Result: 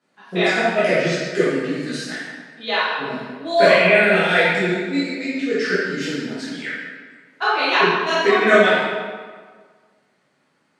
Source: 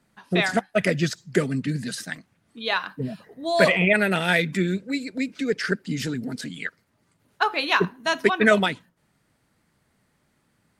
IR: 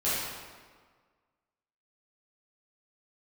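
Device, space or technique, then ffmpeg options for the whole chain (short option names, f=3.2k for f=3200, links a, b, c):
supermarket ceiling speaker: -filter_complex "[0:a]highpass=270,lowpass=6.6k[a];[1:a]atrim=start_sample=2205[b];[a][b]afir=irnorm=-1:irlink=0,volume=-4.5dB"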